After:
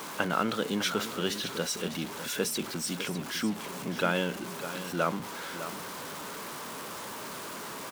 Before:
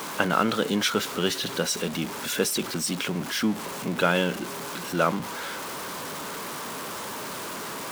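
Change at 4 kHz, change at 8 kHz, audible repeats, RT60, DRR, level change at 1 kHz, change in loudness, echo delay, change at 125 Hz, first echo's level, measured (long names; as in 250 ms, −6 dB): −5.0 dB, −5.0 dB, 1, no reverb audible, no reverb audible, −5.0 dB, −5.0 dB, 602 ms, −5.0 dB, −11.5 dB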